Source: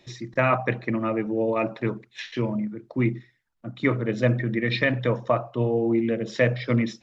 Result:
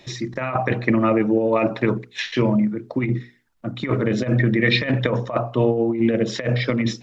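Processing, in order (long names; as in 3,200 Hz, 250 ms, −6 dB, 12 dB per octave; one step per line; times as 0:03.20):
mains-hum notches 60/120/180/240/300/360/420/480 Hz
compressor whose output falls as the input rises −25 dBFS, ratio −0.5
level +7 dB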